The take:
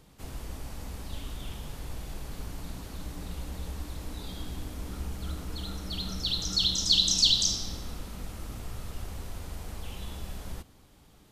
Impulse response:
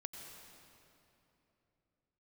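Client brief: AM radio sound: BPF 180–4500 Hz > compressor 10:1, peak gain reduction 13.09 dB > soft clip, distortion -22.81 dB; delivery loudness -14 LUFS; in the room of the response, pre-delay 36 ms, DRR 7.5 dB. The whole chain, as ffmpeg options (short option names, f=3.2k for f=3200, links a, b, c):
-filter_complex "[0:a]asplit=2[a][b];[1:a]atrim=start_sample=2205,adelay=36[c];[b][c]afir=irnorm=-1:irlink=0,volume=-4.5dB[d];[a][d]amix=inputs=2:normalize=0,highpass=180,lowpass=4.5k,acompressor=threshold=-32dB:ratio=10,asoftclip=threshold=-26dB,volume=26.5dB"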